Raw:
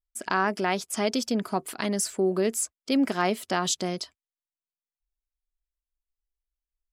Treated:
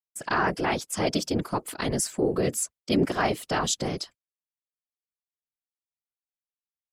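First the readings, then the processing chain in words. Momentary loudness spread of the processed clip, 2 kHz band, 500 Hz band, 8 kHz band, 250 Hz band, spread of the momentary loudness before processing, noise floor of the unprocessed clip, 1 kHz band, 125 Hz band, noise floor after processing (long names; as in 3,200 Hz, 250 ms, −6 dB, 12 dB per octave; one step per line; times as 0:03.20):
5 LU, +0.5 dB, 0.0 dB, 0.0 dB, −1.0 dB, 5 LU, below −85 dBFS, 0.0 dB, +4.5 dB, below −85 dBFS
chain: random phases in short frames
downward expander −44 dBFS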